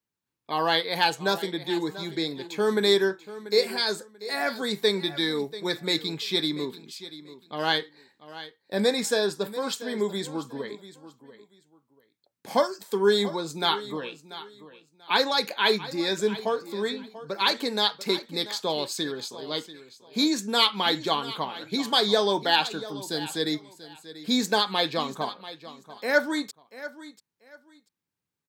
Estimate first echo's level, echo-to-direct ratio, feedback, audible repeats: −15.5 dB, −15.5 dB, 23%, 2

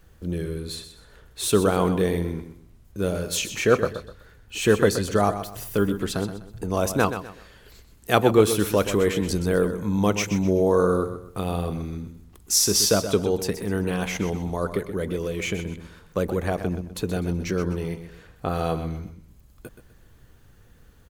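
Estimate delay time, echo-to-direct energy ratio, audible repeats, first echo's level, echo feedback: 126 ms, −10.0 dB, 3, −10.5 dB, 31%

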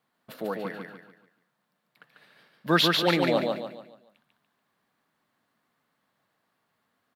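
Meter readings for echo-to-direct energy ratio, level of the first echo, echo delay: −3.0 dB, −3.5 dB, 144 ms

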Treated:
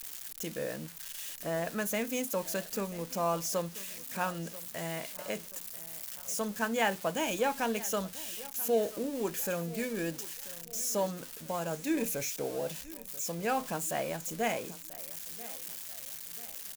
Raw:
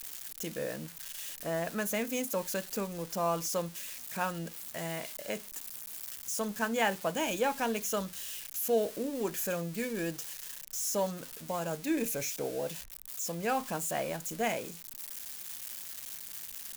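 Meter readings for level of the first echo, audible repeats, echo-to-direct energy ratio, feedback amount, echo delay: −18.5 dB, 3, −17.5 dB, 43%, 987 ms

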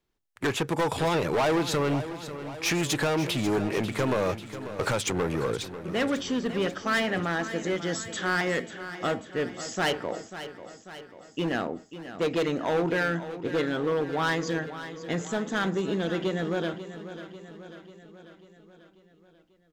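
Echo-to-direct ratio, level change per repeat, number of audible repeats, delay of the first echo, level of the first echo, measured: −10.5 dB, −4.5 dB, 5, 542 ms, −12.5 dB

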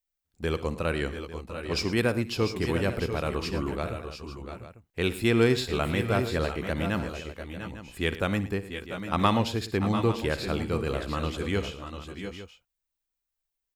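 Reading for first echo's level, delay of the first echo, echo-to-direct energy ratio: −16.5 dB, 61 ms, −6.0 dB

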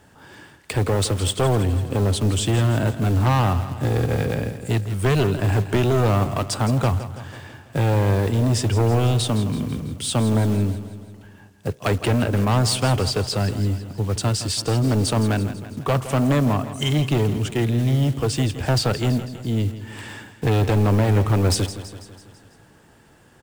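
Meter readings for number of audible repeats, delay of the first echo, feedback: 5, 165 ms, 57%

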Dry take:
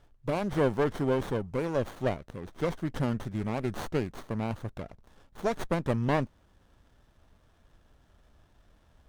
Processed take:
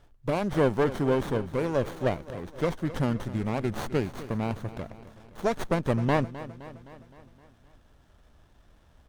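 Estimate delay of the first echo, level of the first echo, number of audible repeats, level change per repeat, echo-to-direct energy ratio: 259 ms, −15.5 dB, 5, −4.5 dB, −13.5 dB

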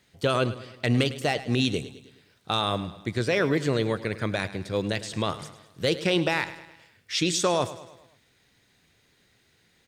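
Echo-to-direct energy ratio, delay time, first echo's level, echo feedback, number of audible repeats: −13.5 dB, 105 ms, −15.0 dB, 51%, 4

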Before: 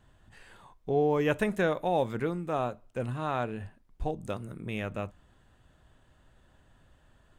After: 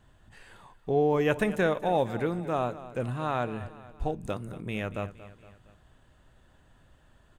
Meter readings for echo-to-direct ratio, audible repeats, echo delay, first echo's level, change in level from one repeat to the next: −14.5 dB, 3, 232 ms, −15.5 dB, −6.0 dB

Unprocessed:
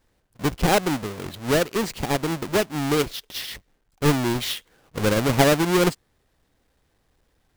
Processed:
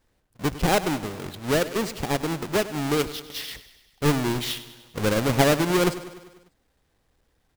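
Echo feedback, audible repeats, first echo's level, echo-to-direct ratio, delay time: 60%, 5, −15.0 dB, −13.0 dB, 99 ms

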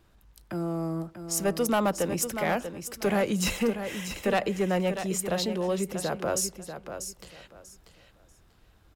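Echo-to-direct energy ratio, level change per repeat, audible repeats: −9.0 dB, −13.0 dB, 2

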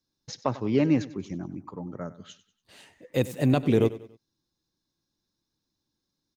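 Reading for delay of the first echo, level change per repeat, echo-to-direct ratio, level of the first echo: 95 ms, −7.5 dB, −16.0 dB, −17.0 dB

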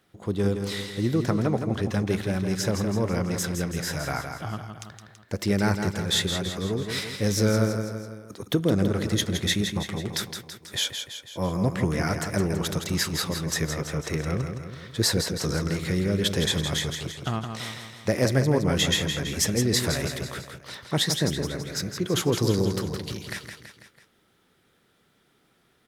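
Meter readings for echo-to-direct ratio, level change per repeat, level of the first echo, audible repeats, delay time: −5.5 dB, −5.0 dB, −7.0 dB, 4, 165 ms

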